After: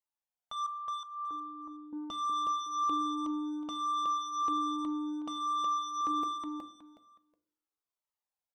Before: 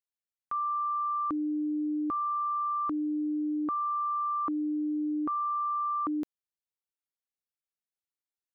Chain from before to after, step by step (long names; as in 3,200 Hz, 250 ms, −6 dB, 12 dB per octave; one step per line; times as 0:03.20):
hum removal 86.93 Hz, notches 5
0:00.66–0:01.93: downward expander −21 dBFS
flat-topped bell 760 Hz +9 dB
soft clipping −28 dBFS, distortion −10 dB
repeating echo 368 ms, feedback 22%, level −3 dB
convolution reverb RT60 0.60 s, pre-delay 5 ms, DRR 10.5 dB
flanger whose copies keep moving one way falling 0.62 Hz
level −1 dB